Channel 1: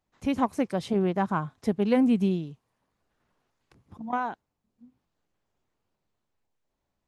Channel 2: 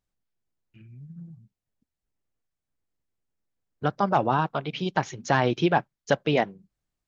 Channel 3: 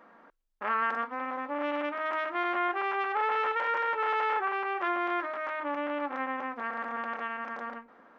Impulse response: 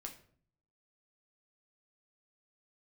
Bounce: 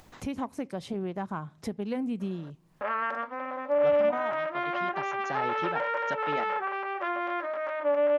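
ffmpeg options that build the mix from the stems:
-filter_complex "[0:a]acompressor=threshold=-26dB:ratio=2.5,volume=-5.5dB,asplit=3[link_01][link_02][link_03];[link_02]volume=-14dB[link_04];[1:a]highpass=160,volume=-13.5dB,asplit=2[link_05][link_06];[link_06]volume=-15.5dB[link_07];[2:a]equalizer=frequency=580:width=7.3:gain=15,adelay=2200,volume=-2dB[link_08];[link_03]apad=whole_len=312202[link_09];[link_05][link_09]sidechaincompress=threshold=-53dB:ratio=8:attack=16:release=232[link_10];[3:a]atrim=start_sample=2205[link_11];[link_04][link_07]amix=inputs=2:normalize=0[link_12];[link_12][link_11]afir=irnorm=-1:irlink=0[link_13];[link_01][link_10][link_08][link_13]amix=inputs=4:normalize=0,acompressor=mode=upward:threshold=-33dB:ratio=2.5"

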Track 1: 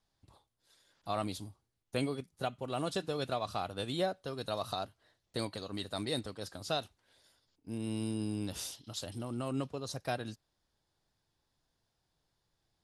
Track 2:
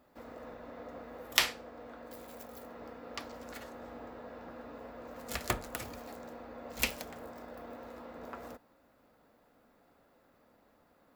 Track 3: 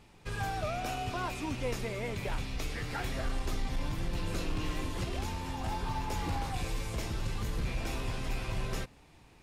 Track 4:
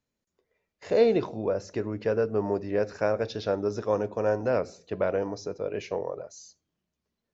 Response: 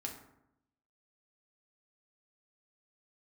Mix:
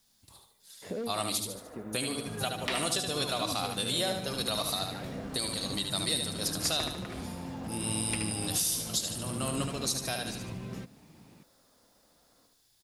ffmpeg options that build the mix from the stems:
-filter_complex "[0:a]crystalizer=i=7.5:c=0,volume=-0.5dB,asplit=3[link_01][link_02][link_03];[link_02]volume=-5.5dB[link_04];[1:a]lowpass=3500,volume=13.5dB,asoftclip=hard,volume=-13.5dB,adelay=1300,volume=-3dB,asplit=2[link_05][link_06];[link_06]volume=-5dB[link_07];[2:a]highpass=78,adelay=2000,volume=-3.5dB[link_08];[3:a]volume=18dB,asoftclip=hard,volume=-18dB,volume=-6dB[link_09];[link_03]apad=whole_len=323328[link_10];[link_09][link_10]sidechaincompress=threshold=-41dB:ratio=8:attack=16:release=980[link_11];[link_08][link_11]amix=inputs=2:normalize=0,equalizer=frequency=200:width=0.94:gain=14.5,acompressor=threshold=-38dB:ratio=3,volume=0dB[link_12];[link_04][link_07]amix=inputs=2:normalize=0,aecho=0:1:74|148|222|296|370|444:1|0.41|0.168|0.0689|0.0283|0.0116[link_13];[link_01][link_05][link_12][link_13]amix=inputs=4:normalize=0,alimiter=limit=-18dB:level=0:latency=1:release=334"

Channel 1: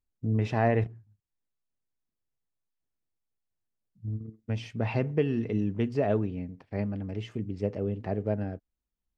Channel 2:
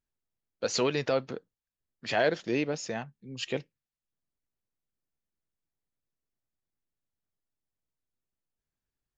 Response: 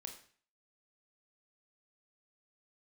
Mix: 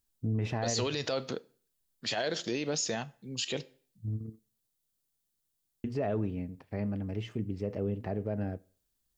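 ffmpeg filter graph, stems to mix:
-filter_complex "[0:a]acontrast=84,volume=-9dB,asplit=3[link_01][link_02][link_03];[link_01]atrim=end=4.39,asetpts=PTS-STARTPTS,afade=type=out:start_time=4.386:duration=0.004:curve=hsin[link_04];[link_02]atrim=start=4.39:end=5.84,asetpts=PTS-STARTPTS,volume=0[link_05];[link_03]atrim=start=5.84,asetpts=PTS-STARTPTS,afade=type=in:duration=0.004:curve=hsin[link_06];[link_04][link_05][link_06]concat=n=3:v=0:a=1,asplit=2[link_07][link_08];[link_08]volume=-11.5dB[link_09];[1:a]aexciter=amount=3.3:drive=3.6:freq=3200,volume=0.5dB,asplit=2[link_10][link_11];[link_11]volume=-11.5dB[link_12];[2:a]atrim=start_sample=2205[link_13];[link_09][link_12]amix=inputs=2:normalize=0[link_14];[link_14][link_13]afir=irnorm=-1:irlink=0[link_15];[link_07][link_10][link_15]amix=inputs=3:normalize=0,alimiter=limit=-22.5dB:level=0:latency=1:release=36"

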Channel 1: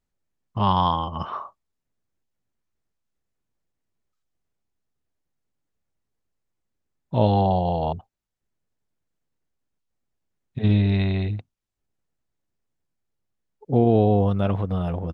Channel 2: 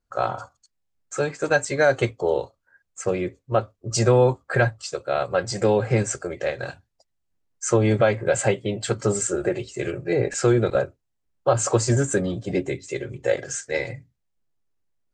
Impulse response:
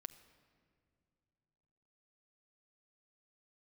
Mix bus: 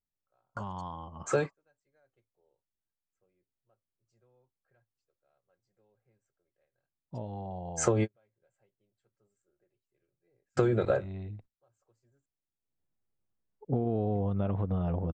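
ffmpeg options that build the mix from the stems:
-filter_complex "[0:a]lowpass=frequency=1100:poles=1,acompressor=threshold=-21dB:ratio=6,volume=-3dB,afade=type=in:start_time=12.61:duration=0.24:silence=0.281838,asplit=2[link_01][link_02];[1:a]highshelf=frequency=4200:gain=-8.5,adelay=150,volume=1dB,asplit=3[link_03][link_04][link_05];[link_03]atrim=end=12.26,asetpts=PTS-STARTPTS,afade=type=out:start_time=12.256:duration=0.004:curve=hsin[link_06];[link_04]atrim=start=12.26:end=14.15,asetpts=PTS-STARTPTS,volume=0[link_07];[link_05]atrim=start=14.15,asetpts=PTS-STARTPTS,afade=type=in:duration=0.004:curve=hsin[link_08];[link_06][link_07][link_08]concat=n=3:v=0:a=1[link_09];[link_02]apad=whole_len=673895[link_10];[link_09][link_10]sidechaingate=range=-53dB:threshold=-52dB:ratio=16:detection=peak[link_11];[link_01][link_11]amix=inputs=2:normalize=0,acompressor=threshold=-23dB:ratio=5"

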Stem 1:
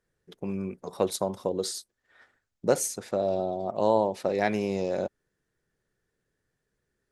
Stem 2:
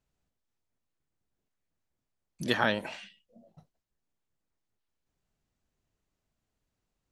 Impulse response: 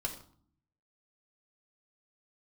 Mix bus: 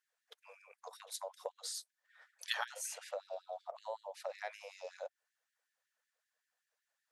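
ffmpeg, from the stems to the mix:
-filter_complex "[0:a]acompressor=threshold=-30dB:ratio=6,volume=-5dB,asplit=2[link_01][link_02];[1:a]acrossover=split=300|3000[link_03][link_04][link_05];[link_04]acompressor=threshold=-31dB:ratio=6[link_06];[link_03][link_06][link_05]amix=inputs=3:normalize=0,volume=-3.5dB[link_07];[link_02]apad=whole_len=313955[link_08];[link_07][link_08]sidechaincompress=threshold=-50dB:ratio=8:attack=9.2:release=134[link_09];[link_01][link_09]amix=inputs=2:normalize=0,afftfilt=real='re*gte(b*sr/1024,430*pow(1600/430,0.5+0.5*sin(2*PI*5.3*pts/sr)))':imag='im*gte(b*sr/1024,430*pow(1600/430,0.5+0.5*sin(2*PI*5.3*pts/sr)))':win_size=1024:overlap=0.75"

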